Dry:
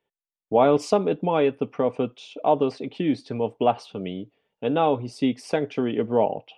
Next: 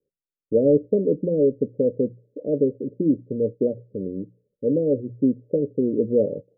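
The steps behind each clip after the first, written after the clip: Chebyshev low-pass 570 Hz, order 8; hum notches 60/120/180 Hz; trim +3.5 dB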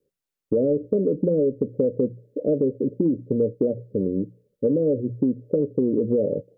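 peak limiter -15 dBFS, peak gain reduction 7.5 dB; compression, threshold -24 dBFS, peak gain reduction 6 dB; trim +6.5 dB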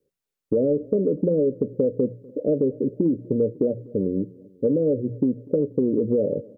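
feedback delay 246 ms, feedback 55%, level -24 dB

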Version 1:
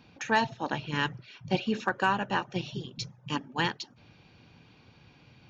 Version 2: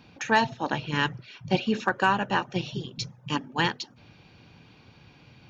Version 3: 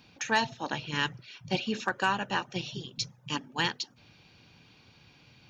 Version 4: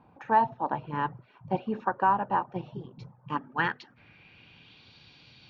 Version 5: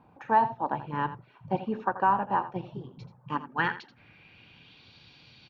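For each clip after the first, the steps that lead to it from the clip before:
de-hum 246 Hz, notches 2; trim +3.5 dB
treble shelf 2.7 kHz +10 dB; trim -6.5 dB
low-pass sweep 950 Hz -> 4.1 kHz, 3.08–4.94 s
delay 83 ms -13.5 dB

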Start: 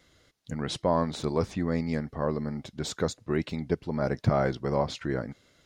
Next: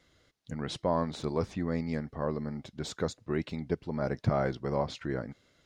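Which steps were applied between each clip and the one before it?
treble shelf 8.3 kHz -6.5 dB; trim -3.5 dB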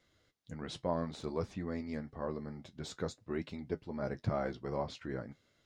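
flange 0.54 Hz, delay 8.9 ms, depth 2.8 ms, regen -50%; trim -2 dB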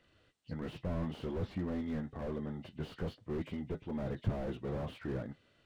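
knee-point frequency compression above 1.8 kHz 1.5:1; slew-rate limiter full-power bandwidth 4.2 Hz; trim +4 dB

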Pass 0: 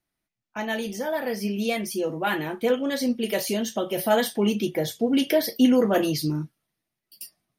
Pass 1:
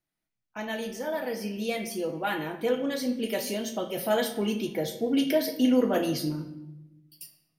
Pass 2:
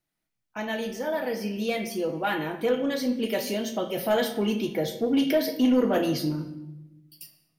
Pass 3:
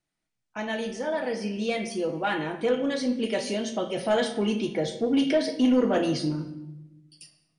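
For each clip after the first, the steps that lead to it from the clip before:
simulated room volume 360 m³, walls mixed, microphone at 0.55 m; trim -5 dB
saturation -16.5 dBFS, distortion -19 dB; dynamic bell 9.4 kHz, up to -6 dB, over -54 dBFS, Q 0.92; trim +3 dB
brick-wall FIR low-pass 10 kHz

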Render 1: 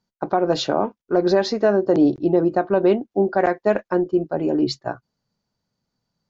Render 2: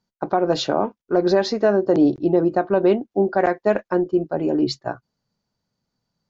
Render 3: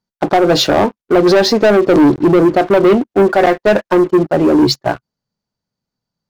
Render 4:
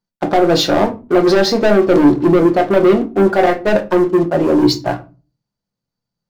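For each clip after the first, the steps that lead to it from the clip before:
no audible change
waveshaping leveller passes 3; trim +2 dB
simulated room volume 140 m³, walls furnished, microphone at 0.84 m; trim -3.5 dB

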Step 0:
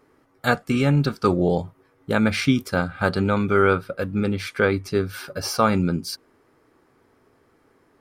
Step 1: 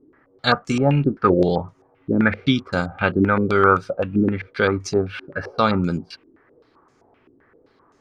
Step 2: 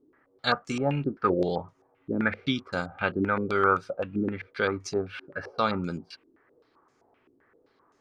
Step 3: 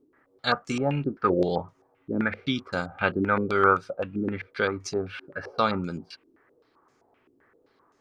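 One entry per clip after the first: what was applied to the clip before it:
step-sequenced low-pass 7.7 Hz 320–6500 Hz
bass shelf 240 Hz -6.5 dB; trim -6.5 dB
random flutter of the level, depth 55%; trim +3.5 dB

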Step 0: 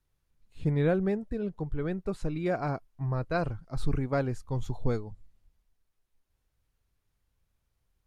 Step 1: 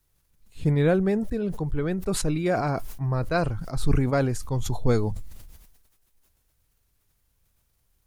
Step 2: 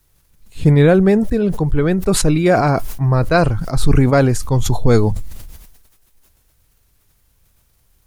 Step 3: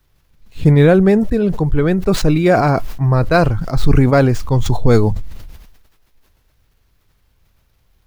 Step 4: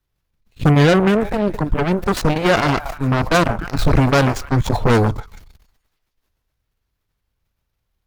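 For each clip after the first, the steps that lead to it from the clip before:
treble shelf 6.4 kHz +11.5 dB; decay stretcher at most 45 dB/s; trim +4.5 dB
loudness maximiser +12 dB; trim -1 dB
median filter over 5 samples; trim +1 dB
repeats whose band climbs or falls 143 ms, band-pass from 920 Hz, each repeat 0.7 oct, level -9 dB; Chebyshev shaper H 7 -20 dB, 8 -13 dB, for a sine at 0 dBFS; trim -4 dB

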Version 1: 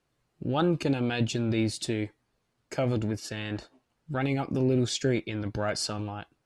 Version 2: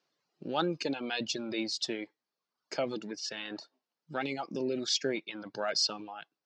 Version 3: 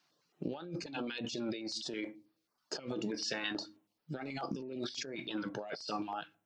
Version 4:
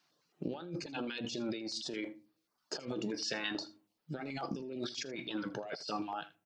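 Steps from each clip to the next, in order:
elliptic band-pass 160–5300 Hz, stop band 40 dB; reverb removal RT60 0.93 s; tone controls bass -9 dB, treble +11 dB; trim -2 dB
simulated room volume 150 m³, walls furnished, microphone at 0.41 m; compressor with a negative ratio -40 dBFS, ratio -1; step-sequenced notch 9.3 Hz 470–6900 Hz; trim +1 dB
delay 80 ms -18.5 dB

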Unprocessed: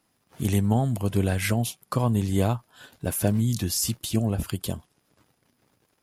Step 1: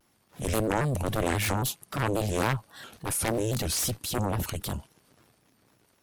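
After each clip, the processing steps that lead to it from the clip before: Chebyshev shaper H 7 -6 dB, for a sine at -8.5 dBFS; transient shaper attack -7 dB, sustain +3 dB; vibrato with a chosen wave square 3.7 Hz, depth 160 cents; trim -5 dB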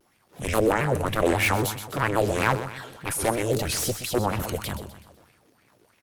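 feedback delay 126 ms, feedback 44%, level -9.5 dB; sweeping bell 3.1 Hz 370–2500 Hz +12 dB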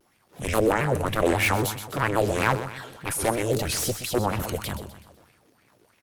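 no audible change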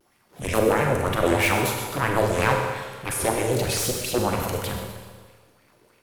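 Schroeder reverb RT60 1.3 s, combs from 32 ms, DRR 2.5 dB

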